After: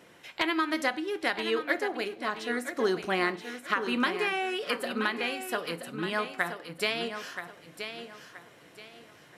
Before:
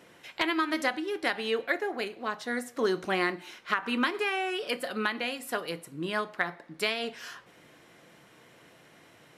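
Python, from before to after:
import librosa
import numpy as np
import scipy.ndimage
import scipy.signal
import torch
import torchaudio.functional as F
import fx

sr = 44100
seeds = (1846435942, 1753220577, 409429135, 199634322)

y = fx.echo_feedback(x, sr, ms=976, feedback_pct=29, wet_db=-9.0)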